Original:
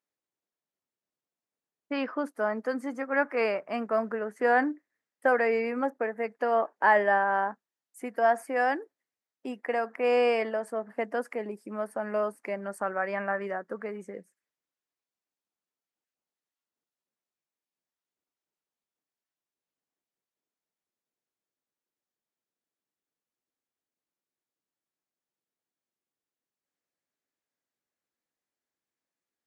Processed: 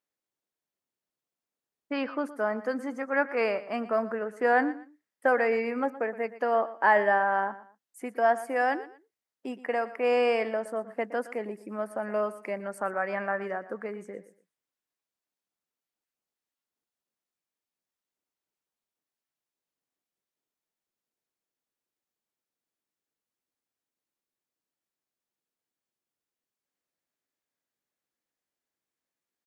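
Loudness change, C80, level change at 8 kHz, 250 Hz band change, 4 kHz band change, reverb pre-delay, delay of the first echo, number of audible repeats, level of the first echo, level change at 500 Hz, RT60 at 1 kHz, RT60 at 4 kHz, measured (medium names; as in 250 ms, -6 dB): 0.0 dB, no reverb, no reading, 0.0 dB, 0.0 dB, no reverb, 118 ms, 2, -16.0 dB, 0.0 dB, no reverb, no reverb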